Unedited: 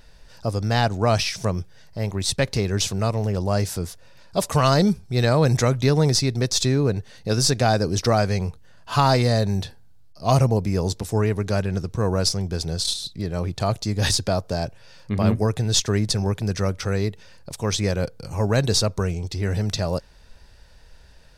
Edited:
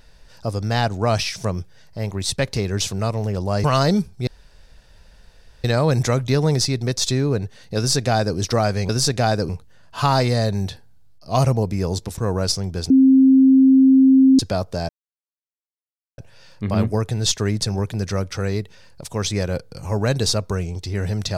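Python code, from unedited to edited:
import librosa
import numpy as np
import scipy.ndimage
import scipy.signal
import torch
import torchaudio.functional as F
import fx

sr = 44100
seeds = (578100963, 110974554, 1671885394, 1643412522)

y = fx.edit(x, sr, fx.cut(start_s=3.64, length_s=0.91),
    fx.insert_room_tone(at_s=5.18, length_s=1.37),
    fx.duplicate(start_s=7.31, length_s=0.6, to_s=8.43),
    fx.cut(start_s=11.11, length_s=0.83),
    fx.bleep(start_s=12.67, length_s=1.49, hz=265.0, db=-8.5),
    fx.insert_silence(at_s=14.66, length_s=1.29), tone=tone)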